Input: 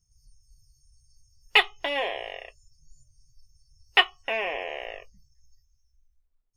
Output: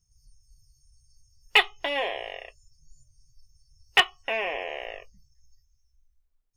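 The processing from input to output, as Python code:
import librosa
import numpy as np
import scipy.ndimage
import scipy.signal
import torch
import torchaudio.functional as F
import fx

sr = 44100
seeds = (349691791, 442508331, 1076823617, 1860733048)

y = 10.0 ** (-7.0 / 20.0) * (np.abs((x / 10.0 ** (-7.0 / 20.0) + 3.0) % 4.0 - 2.0) - 1.0)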